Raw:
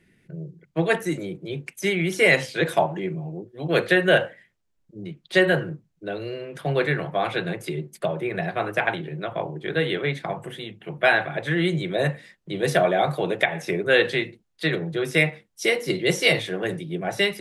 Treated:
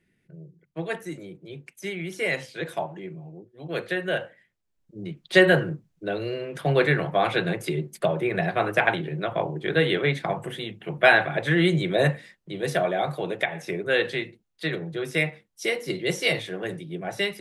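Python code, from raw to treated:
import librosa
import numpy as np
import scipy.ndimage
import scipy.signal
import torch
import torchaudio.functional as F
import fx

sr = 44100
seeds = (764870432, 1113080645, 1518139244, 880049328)

y = fx.gain(x, sr, db=fx.line((4.24, -9.0), (5.19, 2.0), (12.12, 2.0), (12.53, -4.5)))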